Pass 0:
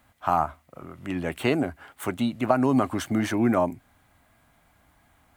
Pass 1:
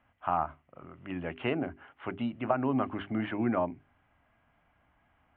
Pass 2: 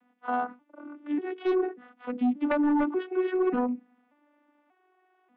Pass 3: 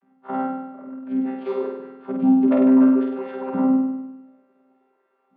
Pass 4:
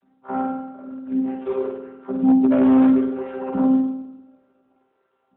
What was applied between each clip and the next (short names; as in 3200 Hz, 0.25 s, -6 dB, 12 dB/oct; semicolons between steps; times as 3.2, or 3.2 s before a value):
elliptic low-pass 3000 Hz, stop band 50 dB; notches 50/100/150/200/250/300/350/400 Hz; gain -6 dB
arpeggiated vocoder minor triad, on B3, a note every 0.587 s; sine folder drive 7 dB, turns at -18 dBFS; gain -2.5 dB
chord vocoder bare fifth, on C3; flutter echo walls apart 8.5 m, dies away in 1 s; gain +3 dB
one-sided fold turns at -12 dBFS; gain +1 dB; AMR-NB 12.2 kbps 8000 Hz